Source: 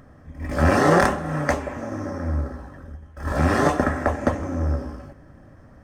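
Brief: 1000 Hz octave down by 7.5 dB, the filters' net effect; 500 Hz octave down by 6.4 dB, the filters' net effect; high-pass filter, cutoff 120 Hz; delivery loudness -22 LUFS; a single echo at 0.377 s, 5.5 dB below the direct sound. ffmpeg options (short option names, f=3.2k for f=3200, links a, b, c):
-af "highpass=120,equalizer=f=500:t=o:g=-5.5,equalizer=f=1k:t=o:g=-8.5,aecho=1:1:377:0.531,volume=4dB"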